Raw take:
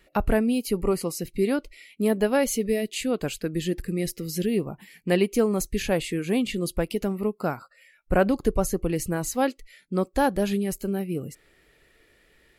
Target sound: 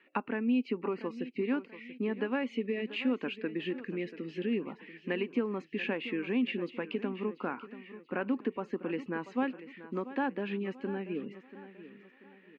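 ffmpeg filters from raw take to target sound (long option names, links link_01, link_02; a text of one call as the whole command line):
ffmpeg -i in.wav -af "acompressor=threshold=-23dB:ratio=6,highpass=frequency=220:width=0.5412,highpass=frequency=220:width=1.3066,equalizer=frequency=250:width_type=q:width=4:gain=7,equalizer=frequency=650:width_type=q:width=4:gain=-9,equalizer=frequency=990:width_type=q:width=4:gain=6,equalizer=frequency=1700:width_type=q:width=4:gain=5,equalizer=frequency=2600:width_type=q:width=4:gain=7,lowpass=frequency=2900:width=0.5412,lowpass=frequency=2900:width=1.3066,aecho=1:1:686|1372|2058|2744:0.188|0.0753|0.0301|0.0121,volume=-5dB" -ar 48000 -c:a libopus -b:a 192k out.opus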